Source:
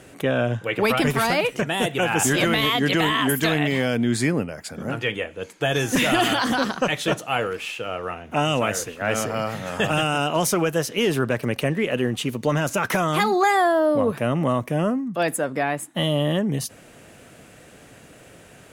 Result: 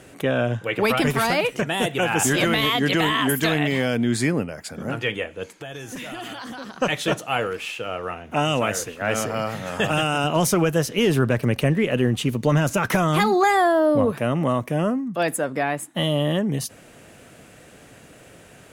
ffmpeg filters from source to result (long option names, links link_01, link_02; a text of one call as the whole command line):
ffmpeg -i in.wav -filter_complex "[0:a]asplit=3[link_01][link_02][link_03];[link_01]afade=type=out:start_time=5.52:duration=0.02[link_04];[link_02]acompressor=threshold=-36dB:ratio=3:attack=3.2:release=140:knee=1:detection=peak,afade=type=in:start_time=5.52:duration=0.02,afade=type=out:start_time=6.8:duration=0.02[link_05];[link_03]afade=type=in:start_time=6.8:duration=0.02[link_06];[link_04][link_05][link_06]amix=inputs=3:normalize=0,asettb=1/sr,asplit=3[link_07][link_08][link_09];[link_07]atrim=end=10.244[link_10];[link_08]atrim=start=10.24:end=14.06,asetpts=PTS-STARTPTS,afade=type=in:duration=0.004:curve=qsin,afade=type=out:start_time=3.816:duration=0.004:curve=qsin,lowshelf=frequency=170:gain=9.5[link_11];[link_09]atrim=start=14.056[link_12];[link_10][link_11]acrossfade=duration=0.004:curve1=hsin:curve2=qsin[link_13];[link_13][link_12]acrossfade=duration=0.004:curve1=qsin:curve2=hsin" out.wav